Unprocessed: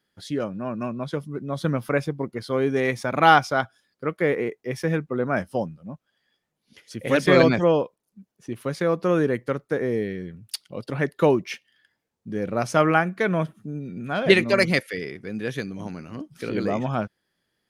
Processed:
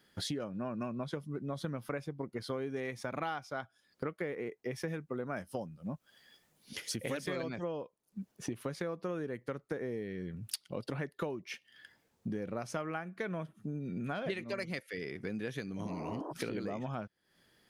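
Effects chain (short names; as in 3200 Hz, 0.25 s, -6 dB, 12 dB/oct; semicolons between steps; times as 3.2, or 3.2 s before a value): 4.88–7.36 high shelf 5500 Hz +8.5 dB; 15.88–16.3 spectral repair 280–1800 Hz before; compressor 10:1, threshold -43 dBFS, peak gain reduction 32 dB; gain +7.5 dB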